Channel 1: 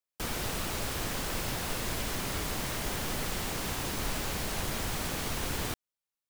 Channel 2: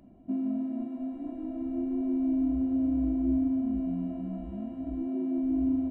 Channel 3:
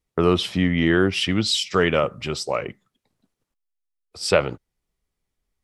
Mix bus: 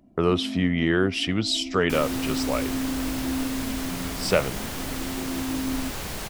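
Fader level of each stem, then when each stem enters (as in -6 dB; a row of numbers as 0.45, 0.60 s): +1.0, -2.0, -3.5 dB; 1.70, 0.00, 0.00 s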